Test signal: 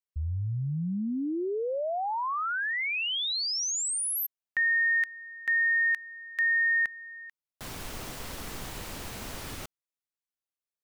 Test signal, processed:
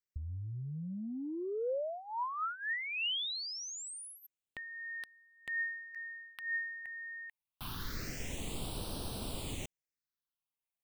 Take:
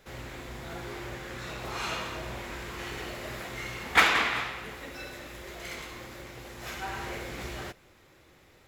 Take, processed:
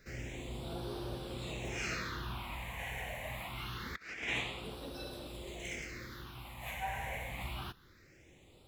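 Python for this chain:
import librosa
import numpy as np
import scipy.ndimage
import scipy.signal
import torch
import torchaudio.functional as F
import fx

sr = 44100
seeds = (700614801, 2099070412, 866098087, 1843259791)

y = fx.phaser_stages(x, sr, stages=6, low_hz=340.0, high_hz=2000.0, hz=0.25, feedback_pct=20)
y = fx.over_compress(y, sr, threshold_db=-33.0, ratio=-0.5)
y = y * librosa.db_to_amplitude(-3.0)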